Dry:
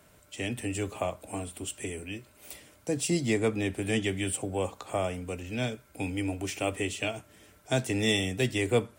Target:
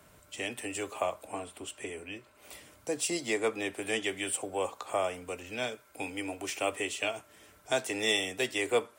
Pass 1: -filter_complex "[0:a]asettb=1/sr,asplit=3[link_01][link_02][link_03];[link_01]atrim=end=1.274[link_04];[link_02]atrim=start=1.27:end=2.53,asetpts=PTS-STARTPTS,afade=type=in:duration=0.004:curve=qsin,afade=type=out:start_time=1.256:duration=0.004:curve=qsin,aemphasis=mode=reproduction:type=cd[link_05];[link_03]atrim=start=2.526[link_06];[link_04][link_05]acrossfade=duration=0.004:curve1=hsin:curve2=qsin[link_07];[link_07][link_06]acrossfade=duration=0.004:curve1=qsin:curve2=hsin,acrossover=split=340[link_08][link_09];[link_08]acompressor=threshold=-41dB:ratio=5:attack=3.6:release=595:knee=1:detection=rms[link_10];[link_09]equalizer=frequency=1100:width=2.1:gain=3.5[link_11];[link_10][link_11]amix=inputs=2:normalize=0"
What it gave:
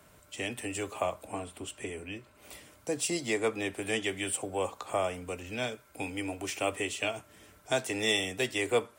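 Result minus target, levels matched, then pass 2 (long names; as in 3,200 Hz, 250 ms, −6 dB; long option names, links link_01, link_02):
downward compressor: peak gain reduction −7 dB
-filter_complex "[0:a]asettb=1/sr,asplit=3[link_01][link_02][link_03];[link_01]atrim=end=1.274[link_04];[link_02]atrim=start=1.27:end=2.53,asetpts=PTS-STARTPTS,afade=type=in:duration=0.004:curve=qsin,afade=type=out:start_time=1.256:duration=0.004:curve=qsin,aemphasis=mode=reproduction:type=cd[link_05];[link_03]atrim=start=2.526[link_06];[link_04][link_05]acrossfade=duration=0.004:curve1=hsin:curve2=qsin[link_07];[link_07][link_06]acrossfade=duration=0.004:curve1=qsin:curve2=hsin,acrossover=split=340[link_08][link_09];[link_08]acompressor=threshold=-50dB:ratio=5:attack=3.6:release=595:knee=1:detection=rms[link_10];[link_09]equalizer=frequency=1100:width=2.1:gain=3.5[link_11];[link_10][link_11]amix=inputs=2:normalize=0"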